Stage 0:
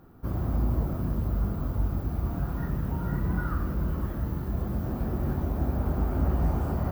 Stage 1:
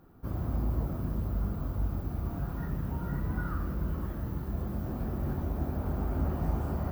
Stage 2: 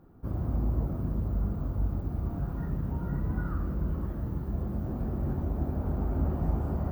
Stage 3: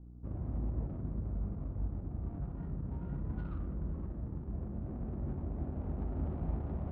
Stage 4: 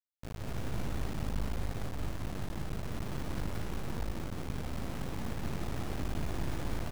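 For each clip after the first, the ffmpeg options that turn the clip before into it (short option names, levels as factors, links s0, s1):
-af "bandreject=f=59.68:t=h:w=4,bandreject=f=119.36:t=h:w=4,bandreject=f=179.04:t=h:w=4,bandreject=f=238.72:t=h:w=4,bandreject=f=298.4:t=h:w=4,bandreject=f=358.08:t=h:w=4,bandreject=f=417.76:t=h:w=4,bandreject=f=477.44:t=h:w=4,bandreject=f=537.12:t=h:w=4,bandreject=f=596.8:t=h:w=4,bandreject=f=656.48:t=h:w=4,bandreject=f=716.16:t=h:w=4,bandreject=f=775.84:t=h:w=4,bandreject=f=835.52:t=h:w=4,bandreject=f=895.2:t=h:w=4,bandreject=f=954.88:t=h:w=4,bandreject=f=1014.56:t=h:w=4,bandreject=f=1074.24:t=h:w=4,bandreject=f=1133.92:t=h:w=4,bandreject=f=1193.6:t=h:w=4,bandreject=f=1253.28:t=h:w=4,bandreject=f=1312.96:t=h:w=4,bandreject=f=1372.64:t=h:w=4,bandreject=f=1432.32:t=h:w=4,bandreject=f=1492:t=h:w=4,bandreject=f=1551.68:t=h:w=4,bandreject=f=1611.36:t=h:w=4,bandreject=f=1671.04:t=h:w=4,bandreject=f=1730.72:t=h:w=4,bandreject=f=1790.4:t=h:w=4,bandreject=f=1850.08:t=h:w=4,bandreject=f=1909.76:t=h:w=4,bandreject=f=1969.44:t=h:w=4,bandreject=f=2029.12:t=h:w=4,bandreject=f=2088.8:t=h:w=4,volume=0.668"
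-af "tiltshelf=f=1300:g=5,volume=0.708"
-af "aeval=exprs='val(0)+0.00794*(sin(2*PI*60*n/s)+sin(2*PI*2*60*n/s)/2+sin(2*PI*3*60*n/s)/3+sin(2*PI*4*60*n/s)/4+sin(2*PI*5*60*n/s)/5)':c=same,adynamicsmooth=sensitivity=3.5:basefreq=690,volume=0.422"
-filter_complex "[0:a]acrusher=bits=4:dc=4:mix=0:aa=0.000001,asplit=2[s0][s1];[s1]aecho=0:1:174.9|233.2:0.891|0.794[s2];[s0][s2]amix=inputs=2:normalize=0"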